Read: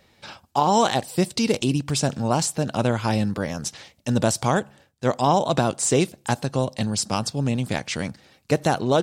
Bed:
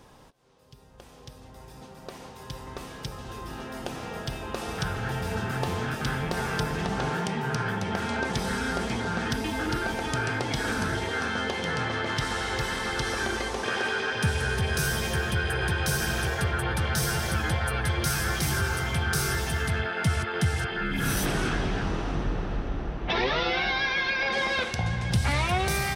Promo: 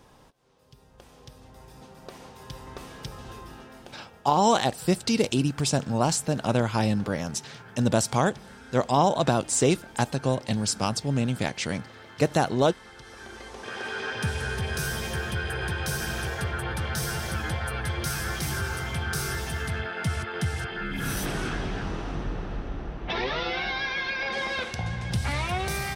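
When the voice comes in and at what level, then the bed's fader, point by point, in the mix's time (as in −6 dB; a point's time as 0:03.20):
3.70 s, −2.0 dB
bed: 0:03.29 −2 dB
0:04.22 −18 dB
0:13.02 −18 dB
0:14.06 −3 dB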